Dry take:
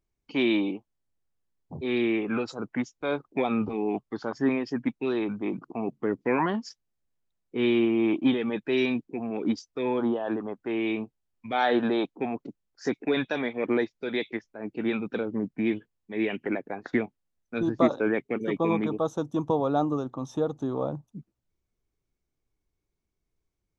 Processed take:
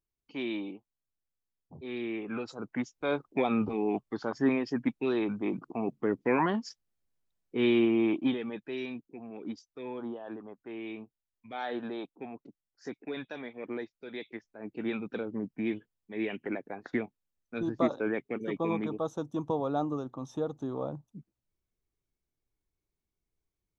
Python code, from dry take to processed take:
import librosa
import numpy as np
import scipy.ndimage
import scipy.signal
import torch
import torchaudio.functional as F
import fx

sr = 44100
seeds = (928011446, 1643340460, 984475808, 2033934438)

y = fx.gain(x, sr, db=fx.line((2.0, -10.5), (3.06, -1.5), (7.96, -1.5), (8.79, -12.0), (14.11, -12.0), (14.69, -5.5)))